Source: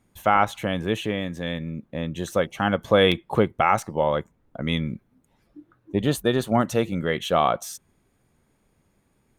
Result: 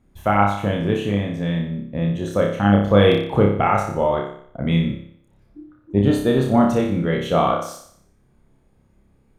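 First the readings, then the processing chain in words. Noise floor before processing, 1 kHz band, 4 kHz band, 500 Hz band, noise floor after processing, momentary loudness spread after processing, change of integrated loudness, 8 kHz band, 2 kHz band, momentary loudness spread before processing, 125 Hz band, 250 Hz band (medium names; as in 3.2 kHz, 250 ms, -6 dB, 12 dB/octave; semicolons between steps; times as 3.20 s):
-67 dBFS, +2.0 dB, -1.5 dB, +4.0 dB, -59 dBFS, 10 LU, +4.5 dB, no reading, +0.5 dB, 12 LU, +8.0 dB, +7.0 dB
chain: tilt EQ -2 dB/octave; flutter echo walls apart 5.1 m, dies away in 0.61 s; trim -1 dB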